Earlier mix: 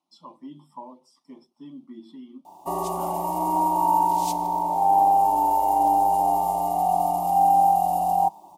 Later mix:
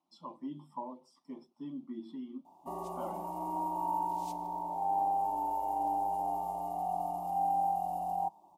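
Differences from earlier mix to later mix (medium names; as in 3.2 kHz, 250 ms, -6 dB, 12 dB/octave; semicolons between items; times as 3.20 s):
background -12.0 dB; master: add treble shelf 2.3 kHz -7.5 dB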